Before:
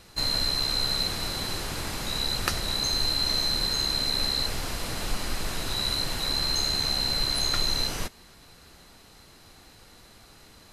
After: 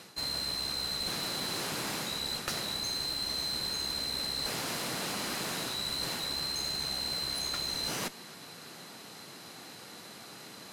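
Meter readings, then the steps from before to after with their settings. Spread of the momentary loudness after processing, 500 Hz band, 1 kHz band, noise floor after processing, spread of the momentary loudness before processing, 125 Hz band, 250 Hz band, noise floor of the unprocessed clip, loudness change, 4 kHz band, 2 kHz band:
15 LU, -4.0 dB, -4.0 dB, -49 dBFS, 8 LU, -9.5 dB, -4.5 dB, -53 dBFS, -6.0 dB, -6.5 dB, -4.0 dB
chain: high-pass 140 Hz 24 dB/octave; reverse; compression 6:1, threshold -36 dBFS, peak gain reduction 15 dB; reverse; one-sided clip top -40 dBFS; trim +5.5 dB

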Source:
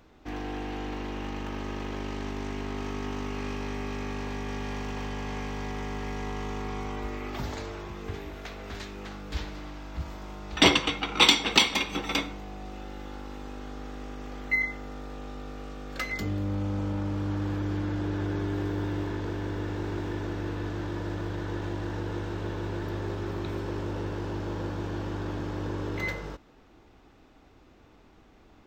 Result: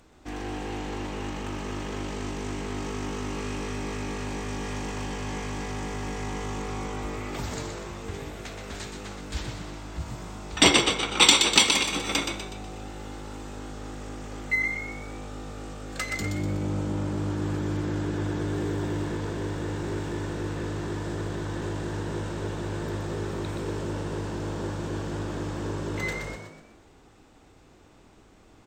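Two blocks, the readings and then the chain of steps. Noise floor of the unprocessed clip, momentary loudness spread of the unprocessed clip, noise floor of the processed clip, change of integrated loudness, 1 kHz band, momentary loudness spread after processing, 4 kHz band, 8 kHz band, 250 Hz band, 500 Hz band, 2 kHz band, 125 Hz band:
-56 dBFS, 14 LU, -55 dBFS, +2.5 dB, +1.5 dB, 15 LU, +2.5 dB, +9.5 dB, +1.0 dB, +2.0 dB, +1.5 dB, +1.5 dB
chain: peaking EQ 8.2 kHz +14 dB 0.71 oct; on a send: frequency-shifting echo 123 ms, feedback 45%, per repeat +54 Hz, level -6 dB

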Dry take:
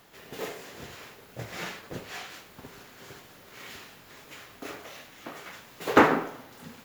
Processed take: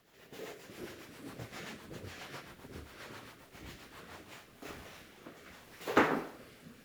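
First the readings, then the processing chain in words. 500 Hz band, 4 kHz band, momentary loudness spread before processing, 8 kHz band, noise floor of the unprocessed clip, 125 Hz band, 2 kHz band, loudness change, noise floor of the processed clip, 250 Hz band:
-8.5 dB, -7.5 dB, 24 LU, -7.5 dB, -53 dBFS, -6.5 dB, -8.0 dB, -11.0 dB, -59 dBFS, -8.5 dB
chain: ever faster or slower copies 287 ms, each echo -4 st, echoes 3; rotary cabinet horn 7.5 Hz, later 0.75 Hz, at 3.84 s; trim -7 dB

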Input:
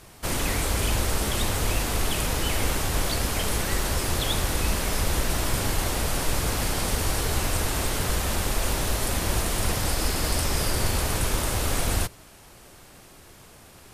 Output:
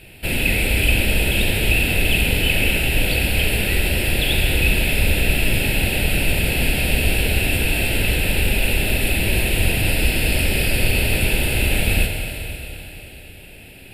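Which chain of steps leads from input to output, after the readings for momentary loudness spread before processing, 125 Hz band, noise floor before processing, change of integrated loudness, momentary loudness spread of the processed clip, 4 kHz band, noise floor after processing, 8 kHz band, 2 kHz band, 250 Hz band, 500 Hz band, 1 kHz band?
1 LU, +7.0 dB, -50 dBFS, +7.0 dB, 3 LU, +7.5 dB, -41 dBFS, +0.5 dB, +12.0 dB, +7.0 dB, +5.0 dB, -2.5 dB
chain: peaking EQ 2.6 kHz +13.5 dB 0.22 oct; static phaser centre 2.7 kHz, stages 4; Schroeder reverb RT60 3.5 s, combs from 30 ms, DRR 2.5 dB; trim +5.5 dB

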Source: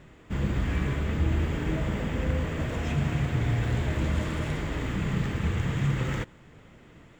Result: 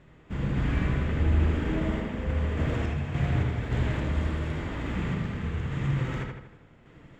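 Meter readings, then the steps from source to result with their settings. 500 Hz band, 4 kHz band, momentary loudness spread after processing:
-0.5 dB, -3.0 dB, 7 LU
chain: random-step tremolo 3.5 Hz; treble shelf 7.3 kHz -12 dB; on a send: filtered feedback delay 79 ms, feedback 52%, low-pass 4.3 kHz, level -3 dB

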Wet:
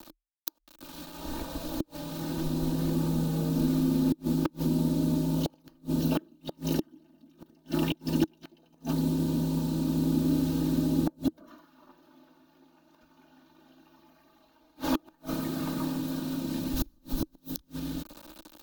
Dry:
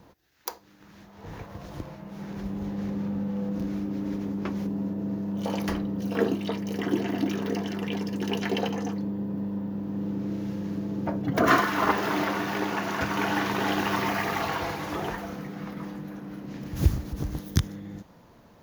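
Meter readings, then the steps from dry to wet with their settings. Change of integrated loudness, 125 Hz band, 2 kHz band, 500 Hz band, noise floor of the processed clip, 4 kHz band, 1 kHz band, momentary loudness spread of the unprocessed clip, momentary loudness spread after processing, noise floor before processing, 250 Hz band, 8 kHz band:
-1.0 dB, 0.0 dB, -15.5 dB, -6.0 dB, -65 dBFS, -4.5 dB, -12.5 dB, 13 LU, 12 LU, -55 dBFS, 0.0 dB, -0.5 dB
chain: word length cut 8-bit, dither none; comb 3.2 ms, depth 76%; frequency shift -39 Hz; inverted gate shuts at -19 dBFS, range -38 dB; graphic EQ with 31 bands 315 Hz +9 dB, 2 kHz -12 dB, 4 kHz +7 dB, 16 kHz +11 dB; trim +2 dB

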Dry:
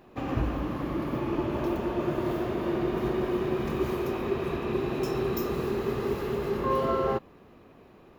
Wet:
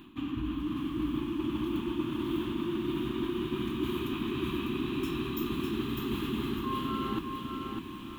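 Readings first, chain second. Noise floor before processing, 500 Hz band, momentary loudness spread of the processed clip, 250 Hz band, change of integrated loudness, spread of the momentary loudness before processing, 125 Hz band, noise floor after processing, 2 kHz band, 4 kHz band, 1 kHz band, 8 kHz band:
-54 dBFS, -9.0 dB, 3 LU, -0.5 dB, -4.0 dB, 3 LU, -4.5 dB, -42 dBFS, -3.0 dB, +4.5 dB, -6.0 dB, no reading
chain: FFT filter 170 Hz 0 dB, 310 Hz +10 dB, 480 Hz -24 dB, 710 Hz -20 dB, 1 kHz +1 dB, 2 kHz -3 dB, 3.3 kHz +13 dB, 5.1 kHz -8 dB, 8.1 kHz +3 dB; reverse; compression 10:1, threshold -39 dBFS, peak gain reduction 21 dB; reverse; bit-crushed delay 601 ms, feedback 35%, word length 11-bit, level -4.5 dB; trim +8 dB

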